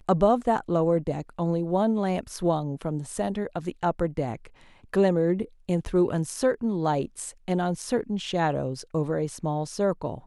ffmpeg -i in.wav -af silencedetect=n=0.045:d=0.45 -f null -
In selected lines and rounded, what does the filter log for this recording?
silence_start: 4.35
silence_end: 4.94 | silence_duration: 0.58